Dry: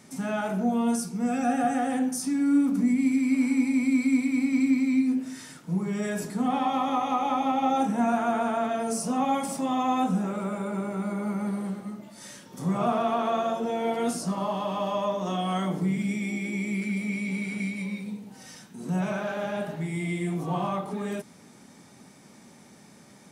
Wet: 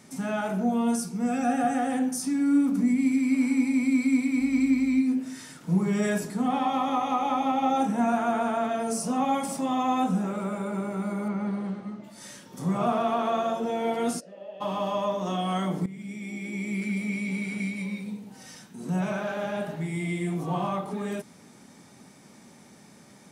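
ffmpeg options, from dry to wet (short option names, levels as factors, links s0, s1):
-filter_complex "[0:a]asettb=1/sr,asplit=3[s0][s1][s2];[s0]atrim=end=4.404[s3];[s1]atrim=start=4.4:end=4.99,asetpts=PTS-STARTPTS,afade=t=in:d=0.004:c=qsin,afade=t=out:st=0.586:d=0.004:c=qsin,aeval=exprs='val(0)+0.00316*(sin(2*PI*50*n/s)+sin(2*PI*2*50*n/s)/2+sin(2*PI*3*50*n/s)/3+sin(2*PI*4*50*n/s)/4+sin(2*PI*5*50*n/s)/5)':c=same[s4];[s2]atrim=start=4.986[s5];[s3][s4]acrossfade=d=0.004:c1=hsin:c2=qsin[s6];[s6][s5]acrossfade=d=0.004:c1=qsin:c2=hsin,asettb=1/sr,asplit=3[s7][s8][s9];[s7]atrim=end=11.284[s10];[s8]atrim=start=11.28:end=12.04,asetpts=PTS-STARTPTS,afade=t=in:d=0.004:c=qsin,afade=t=out:st=0.756:d=0.004:c=qsin,lowpass=4500[s11];[s9]atrim=start=12.036[s12];[s10][s11]acrossfade=d=0.004:c1=hsin:c2=qsin[s13];[s13][s12]acrossfade=d=0.004:c1=qsin:c2=hsin,asplit=3[s14][s15][s16];[s14]afade=t=out:st=14.19:d=0.02[s17];[s15]asplit=3[s18][s19][s20];[s18]bandpass=f=530:t=q:w=8,volume=1[s21];[s19]bandpass=f=1840:t=q:w=8,volume=0.501[s22];[s20]bandpass=f=2480:t=q:w=8,volume=0.355[s23];[s21][s22][s23]amix=inputs=3:normalize=0,afade=t=in:st=14.19:d=0.02,afade=t=out:st=14.6:d=0.02[s24];[s16]afade=t=in:st=14.6:d=0.02[s25];[s17][s24][s25]amix=inputs=3:normalize=0,asplit=4[s26][s27][s28][s29];[s26]atrim=end=5.612[s30];[s27]atrim=start=5.608:end=6.182,asetpts=PTS-STARTPTS,volume=1.58[s31];[s28]atrim=start=6.178:end=15.86,asetpts=PTS-STARTPTS,afade=t=out:st=9.678:d=0.004:c=hsin:silence=0.158489[s32];[s29]atrim=start=15.86,asetpts=PTS-STARTPTS,afade=t=in:d=1.01:silence=0.158489[s33];[s30][s31]acrossfade=d=0.004:c1=hsin:c2=hsin[s34];[s32][s33]concat=n=2:v=0:a=1[s35];[s34][s35]acrossfade=d=0.004:c1=hsin:c2=hsin"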